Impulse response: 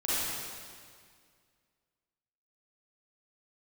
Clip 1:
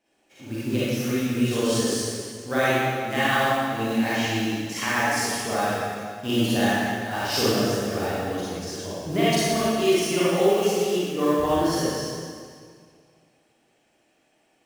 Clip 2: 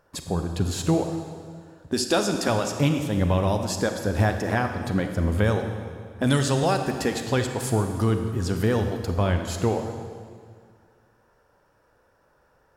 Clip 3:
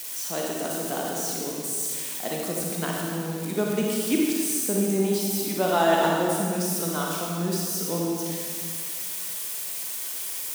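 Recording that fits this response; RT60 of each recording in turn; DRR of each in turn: 1; 2.0 s, 2.0 s, 2.0 s; -11.0 dB, 5.5 dB, -2.5 dB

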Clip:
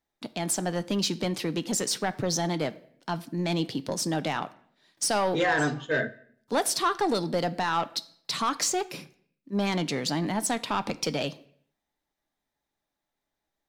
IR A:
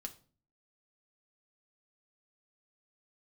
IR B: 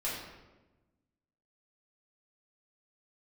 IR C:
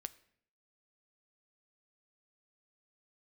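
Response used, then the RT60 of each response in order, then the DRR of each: C; 0.40 s, 1.1 s, 0.65 s; 4.0 dB, -9.0 dB, 12.5 dB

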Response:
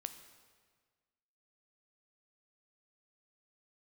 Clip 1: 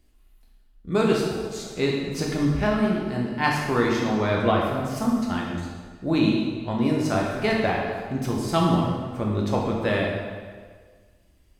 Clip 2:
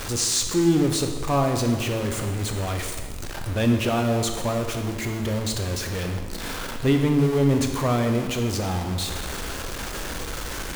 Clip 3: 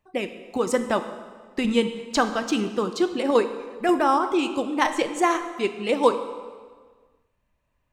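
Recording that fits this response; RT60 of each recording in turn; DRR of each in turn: 3; 1.6 s, 1.6 s, 1.6 s; -2.5 dB, 4.0 dB, 8.5 dB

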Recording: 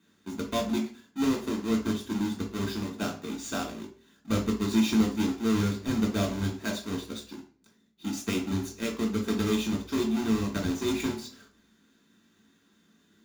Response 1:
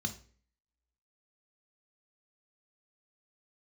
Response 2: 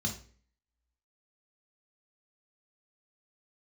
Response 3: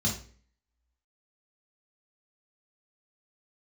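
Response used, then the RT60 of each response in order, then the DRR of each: 2; 0.45 s, 0.45 s, 0.45 s; 6.0 dB, 1.0 dB, -3.5 dB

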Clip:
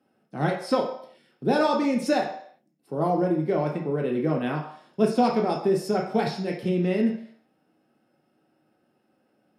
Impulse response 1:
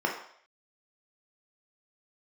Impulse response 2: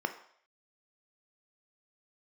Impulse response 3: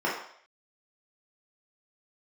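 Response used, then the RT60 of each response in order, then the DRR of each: 1; 0.60 s, 0.60 s, 0.60 s; 0.0 dB, 7.5 dB, -6.0 dB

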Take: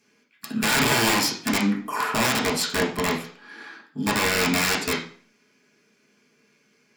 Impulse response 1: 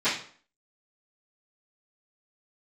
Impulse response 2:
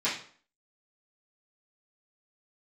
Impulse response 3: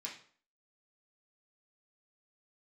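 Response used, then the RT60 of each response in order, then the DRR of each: 3; 0.50 s, 0.50 s, 0.50 s; -20.0 dB, -12.5 dB, -4.5 dB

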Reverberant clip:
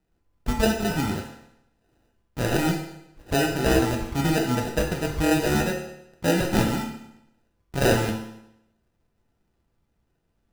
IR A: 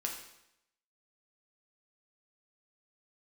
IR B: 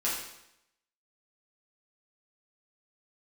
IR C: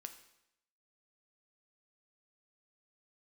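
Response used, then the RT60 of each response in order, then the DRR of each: A; 0.80 s, 0.80 s, 0.80 s; 0.0 dB, -8.0 dB, 7.0 dB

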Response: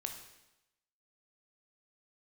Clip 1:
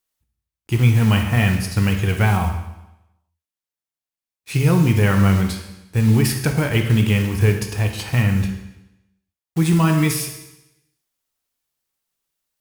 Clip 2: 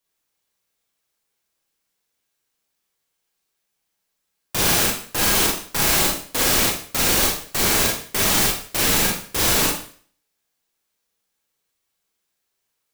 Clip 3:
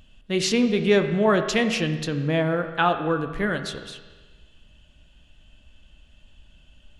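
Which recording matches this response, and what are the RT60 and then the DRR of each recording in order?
1; 0.95 s, 0.45 s, 1.4 s; 4.0 dB, -2.5 dB, 6.5 dB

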